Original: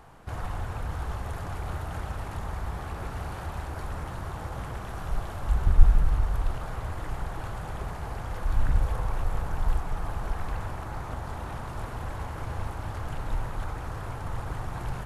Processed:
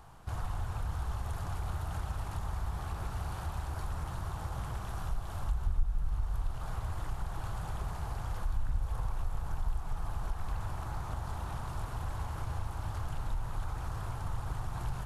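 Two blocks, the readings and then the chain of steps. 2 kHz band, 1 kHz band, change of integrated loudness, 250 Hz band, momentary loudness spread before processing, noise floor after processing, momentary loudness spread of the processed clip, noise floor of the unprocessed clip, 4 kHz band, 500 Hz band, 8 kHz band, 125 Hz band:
−7.5 dB, −5.5 dB, −5.5 dB, −7.0 dB, 8 LU, −40 dBFS, 3 LU, −37 dBFS, −4.0 dB, −8.5 dB, can't be measured, −4.5 dB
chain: octave-band graphic EQ 250/500/2,000 Hz −6/−7/−7 dB
downward compressor 2.5 to 1, threshold −31 dBFS, peak gain reduction 16 dB

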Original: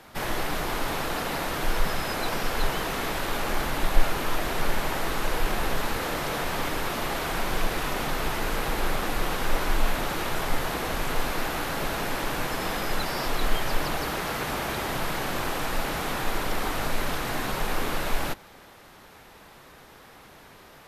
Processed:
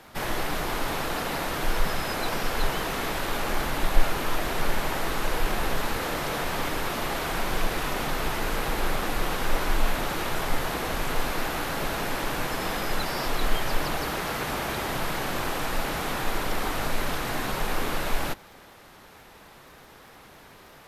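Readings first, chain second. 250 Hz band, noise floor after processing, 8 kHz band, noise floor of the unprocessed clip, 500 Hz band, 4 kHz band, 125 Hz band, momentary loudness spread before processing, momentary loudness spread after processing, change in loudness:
0.0 dB, −50 dBFS, 0.0 dB, −50 dBFS, 0.0 dB, 0.0 dB, 0.0 dB, 1 LU, 1 LU, 0.0 dB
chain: surface crackle 30 per second −45 dBFS

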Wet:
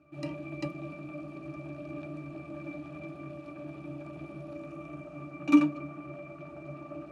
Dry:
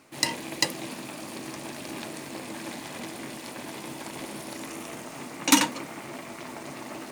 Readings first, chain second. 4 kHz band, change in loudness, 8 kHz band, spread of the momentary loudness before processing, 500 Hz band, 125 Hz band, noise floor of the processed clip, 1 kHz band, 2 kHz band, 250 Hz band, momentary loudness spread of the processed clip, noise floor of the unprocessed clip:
below −20 dB, −4.0 dB, below −30 dB, 15 LU, −2.5 dB, +3.0 dB, −47 dBFS, −10.0 dB, −10.0 dB, +2.0 dB, 16 LU, −41 dBFS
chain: resonances in every octave D, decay 0.15 s
level +7.5 dB

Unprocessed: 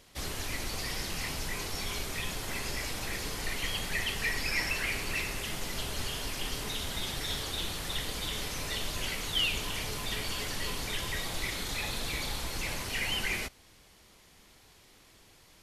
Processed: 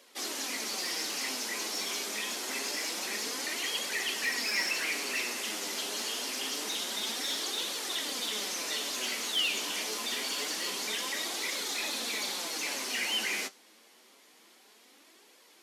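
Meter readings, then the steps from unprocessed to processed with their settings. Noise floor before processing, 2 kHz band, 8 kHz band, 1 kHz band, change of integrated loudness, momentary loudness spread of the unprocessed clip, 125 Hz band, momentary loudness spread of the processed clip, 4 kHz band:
−59 dBFS, +0.5 dB, +4.5 dB, +0.5 dB, +2.0 dB, 5 LU, below −20 dB, 4 LU, +2.5 dB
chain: Butterworth high-pass 220 Hz 48 dB per octave
dynamic equaliser 6,000 Hz, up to +6 dB, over −50 dBFS, Q 1.2
in parallel at −3 dB: gain into a clipping stage and back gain 30.5 dB
on the sum: flanger 0.26 Hz, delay 1.7 ms, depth 8.8 ms, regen +52%

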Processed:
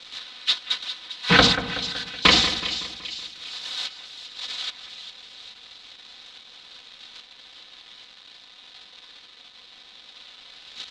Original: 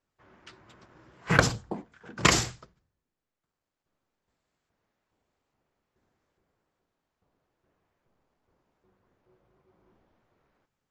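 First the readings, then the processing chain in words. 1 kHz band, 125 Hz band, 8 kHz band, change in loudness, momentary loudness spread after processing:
+5.5 dB, 0.0 dB, −1.0 dB, +3.0 dB, 25 LU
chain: spike at every zero crossing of −17.5 dBFS
high-pass filter 53 Hz
comb filter 4 ms, depth 73%
noise gate −24 dBFS, range −17 dB
leveller curve on the samples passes 3
in parallel at −1 dB: speech leveller 2 s
on the sum: transistor ladder low-pass 4,100 Hz, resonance 70%
on a send: echo with a time of its own for lows and highs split 2,600 Hz, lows 187 ms, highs 399 ms, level −11 dB
on the sum: highs frequency-modulated by the lows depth 0.15 ms

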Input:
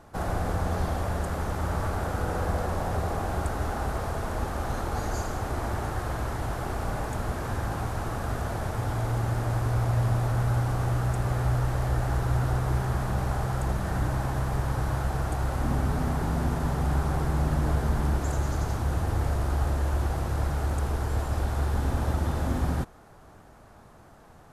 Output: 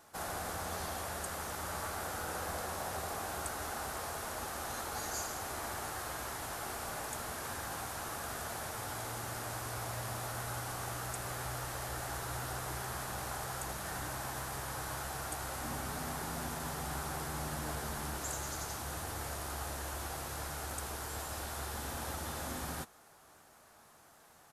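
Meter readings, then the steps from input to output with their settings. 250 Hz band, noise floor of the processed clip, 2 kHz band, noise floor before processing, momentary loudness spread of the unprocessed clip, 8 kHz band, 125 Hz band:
−14.0 dB, −61 dBFS, −4.0 dB, −52 dBFS, 5 LU, +3.5 dB, −18.5 dB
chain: spectral tilt +3.5 dB per octave
double-tracking delay 13 ms −12.5 dB
level −7 dB

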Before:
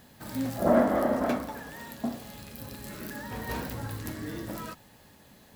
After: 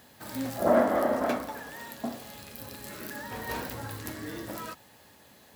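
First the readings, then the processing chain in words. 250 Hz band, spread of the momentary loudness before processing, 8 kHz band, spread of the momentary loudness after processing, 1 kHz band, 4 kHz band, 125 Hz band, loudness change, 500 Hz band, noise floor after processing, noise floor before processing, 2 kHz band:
−3.0 dB, 18 LU, +1.5 dB, 18 LU, +1.0 dB, +1.5 dB, −4.5 dB, −0.5 dB, +0.5 dB, −57 dBFS, −56 dBFS, +1.5 dB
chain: high-pass filter 88 Hz 12 dB per octave
parametric band 170 Hz −7 dB 1.5 octaves
level +1.5 dB

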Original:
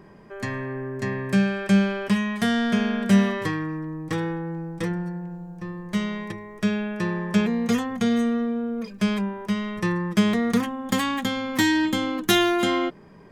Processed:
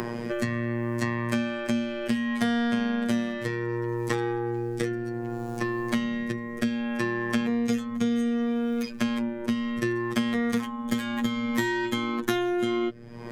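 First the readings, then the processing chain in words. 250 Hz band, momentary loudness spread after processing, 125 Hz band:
−3.5 dB, 4 LU, −5.0 dB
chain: rotating-speaker cabinet horn 0.65 Hz
phases set to zero 118 Hz
multiband upward and downward compressor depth 100%

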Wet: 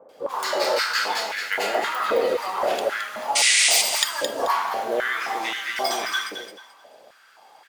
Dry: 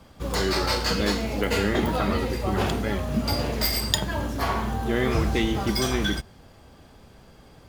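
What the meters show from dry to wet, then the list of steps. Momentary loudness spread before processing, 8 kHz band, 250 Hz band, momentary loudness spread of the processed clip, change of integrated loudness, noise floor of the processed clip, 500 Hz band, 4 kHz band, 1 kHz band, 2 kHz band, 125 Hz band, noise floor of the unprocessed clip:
4 LU, +11.0 dB, −13.5 dB, 10 LU, +3.0 dB, −53 dBFS, +2.0 dB, +5.0 dB, +5.0 dB, +6.5 dB, below −25 dB, −51 dBFS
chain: multiband delay without the direct sound lows, highs 90 ms, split 1,200 Hz
sound drawn into the spectrogram noise, 0:03.35–0:03.82, 1,900–9,800 Hz −20 dBFS
on a send: repeating echo 217 ms, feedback 25%, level −7 dB
on the sum: high-pass on a step sequencer 3.8 Hz 500–1,700 Hz

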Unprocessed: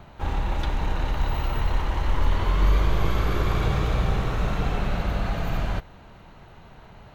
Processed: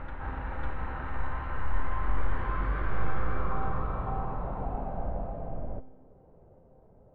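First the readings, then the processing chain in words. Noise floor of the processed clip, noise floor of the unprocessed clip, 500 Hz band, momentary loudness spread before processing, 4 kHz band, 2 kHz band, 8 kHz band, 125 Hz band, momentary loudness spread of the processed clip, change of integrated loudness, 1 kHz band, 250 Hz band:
−57 dBFS, −48 dBFS, −7.0 dB, 5 LU, −21.5 dB, −6.5 dB, below −30 dB, −10.0 dB, 6 LU, −8.5 dB, −4.0 dB, −9.0 dB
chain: tuned comb filter 260 Hz, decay 0.88 s, mix 80%
backwards echo 550 ms −3.5 dB
low-pass filter sweep 1,600 Hz → 520 Hz, 0:02.98–0:05.99
level +1.5 dB

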